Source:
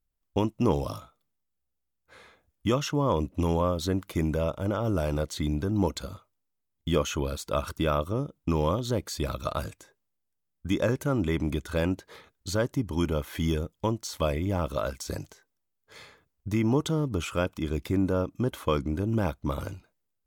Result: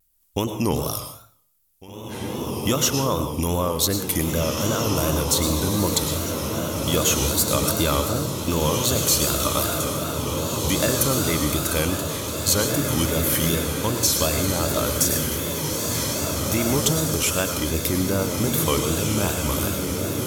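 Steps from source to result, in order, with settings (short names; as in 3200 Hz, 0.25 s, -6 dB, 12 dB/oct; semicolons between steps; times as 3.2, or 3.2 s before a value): bell 13000 Hz +14 dB 1.3 oct; in parallel at +2 dB: compressor, threshold -32 dBFS, peak gain reduction 13 dB; on the sum: high shelf 2300 Hz +9 dB; on a send: diffused feedback echo 1.973 s, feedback 62%, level -3 dB; on the sum: plate-style reverb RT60 0.54 s, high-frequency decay 0.85×, pre-delay 90 ms, DRR 7 dB; vibrato 2.6 Hz 92 cents; gain -2 dB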